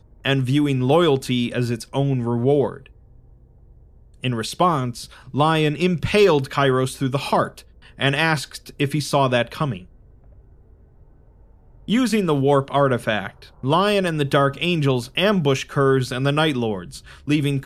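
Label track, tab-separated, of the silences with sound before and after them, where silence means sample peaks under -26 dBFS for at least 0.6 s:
2.770000	4.240000	silence
9.770000	11.880000	silence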